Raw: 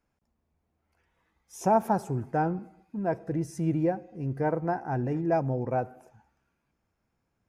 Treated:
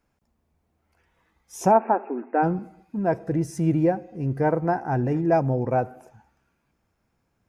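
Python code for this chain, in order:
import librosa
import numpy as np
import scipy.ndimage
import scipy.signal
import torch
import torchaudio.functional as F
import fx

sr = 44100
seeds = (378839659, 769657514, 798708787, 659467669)

y = fx.brickwall_bandpass(x, sr, low_hz=220.0, high_hz=2800.0, at=(1.71, 2.42), fade=0.02)
y = fx.dmg_crackle(y, sr, seeds[0], per_s=72.0, level_db=-55.0, at=(3.42, 3.87), fade=0.02)
y = y * 10.0 ** (5.5 / 20.0)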